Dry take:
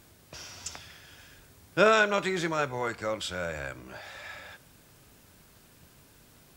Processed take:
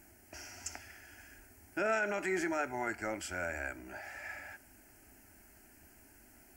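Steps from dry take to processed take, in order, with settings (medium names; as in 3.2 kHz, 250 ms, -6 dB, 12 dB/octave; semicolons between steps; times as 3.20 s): static phaser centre 740 Hz, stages 8; peak limiter -23.5 dBFS, peak gain reduction 12 dB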